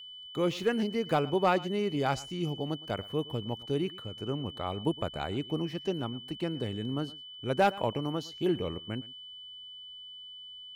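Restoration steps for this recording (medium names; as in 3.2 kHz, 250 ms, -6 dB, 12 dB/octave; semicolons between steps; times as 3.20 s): clip repair -17 dBFS; band-stop 3 kHz, Q 30; inverse comb 113 ms -20.5 dB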